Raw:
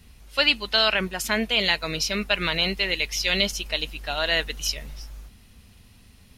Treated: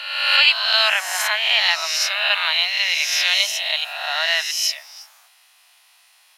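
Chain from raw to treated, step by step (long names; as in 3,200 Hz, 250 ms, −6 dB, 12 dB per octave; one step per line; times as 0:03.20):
peak hold with a rise ahead of every peak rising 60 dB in 1.15 s
Butterworth high-pass 690 Hz 48 dB per octave
level +2 dB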